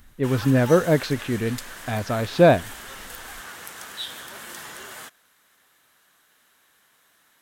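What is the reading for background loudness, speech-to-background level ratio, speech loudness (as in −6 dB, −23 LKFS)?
−36.5 LKFS, 15.5 dB, −21.0 LKFS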